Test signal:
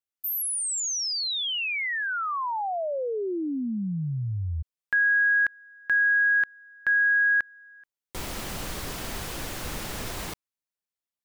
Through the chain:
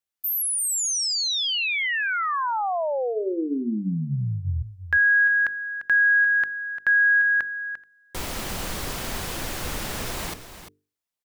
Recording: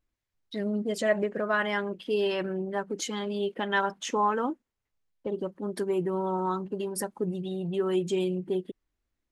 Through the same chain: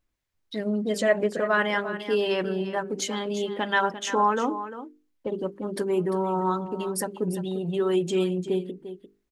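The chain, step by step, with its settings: hum notches 50/100/150/200/250/300/350/400/450 Hz; delay 347 ms -12 dB; trim +3.5 dB

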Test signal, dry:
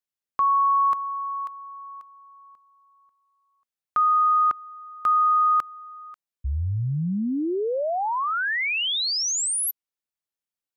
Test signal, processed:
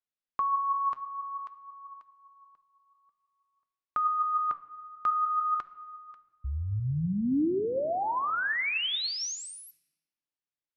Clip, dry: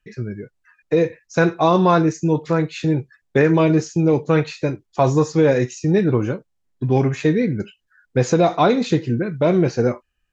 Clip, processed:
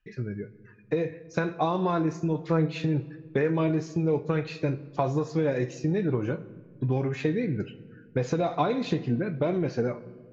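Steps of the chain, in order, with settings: compression, threshold -18 dBFS; flange 0.53 Hz, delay 2.5 ms, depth 5.1 ms, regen +78%; low-pass 4.5 kHz 12 dB/octave; simulated room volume 1800 m³, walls mixed, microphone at 0.36 m

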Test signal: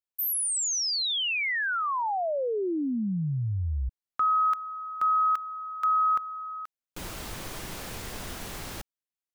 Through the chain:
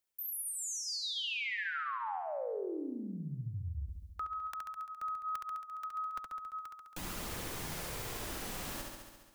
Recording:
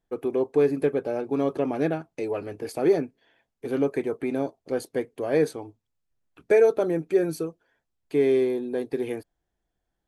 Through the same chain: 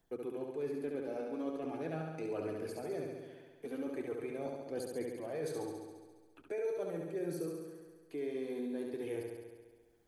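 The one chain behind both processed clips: treble shelf 7.3 kHz +5 dB; reverse; compression, threshold -32 dBFS; reverse; flange 0.41 Hz, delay 0 ms, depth 4.2 ms, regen -44%; flutter echo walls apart 11.8 m, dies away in 1.1 s; three bands compressed up and down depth 40%; trim -2.5 dB

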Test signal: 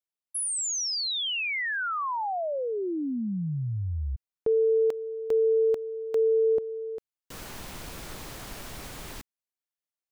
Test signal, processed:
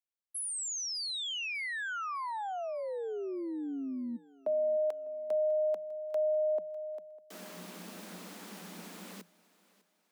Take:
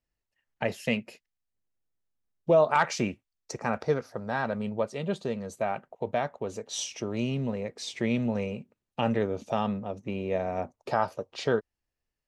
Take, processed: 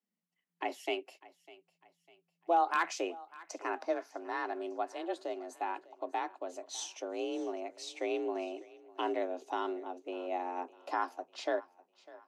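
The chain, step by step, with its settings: wavefolder -12.5 dBFS; frequency shift +170 Hz; thinning echo 601 ms, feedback 43%, high-pass 280 Hz, level -20 dB; trim -7 dB

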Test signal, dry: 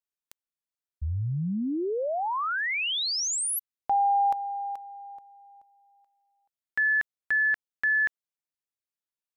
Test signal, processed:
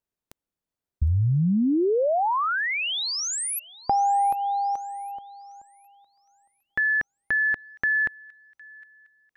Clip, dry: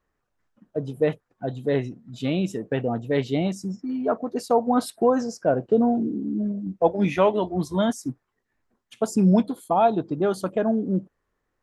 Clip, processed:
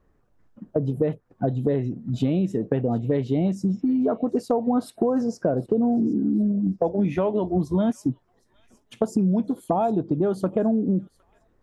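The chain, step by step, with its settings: tilt shelf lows +7.5 dB, about 840 Hz; in parallel at +2.5 dB: peak limiter -11.5 dBFS; on the sum: compression 6:1, threshold -20 dBFS; feedback echo behind a high-pass 760 ms, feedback 38%, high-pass 2.1 kHz, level -19 dB

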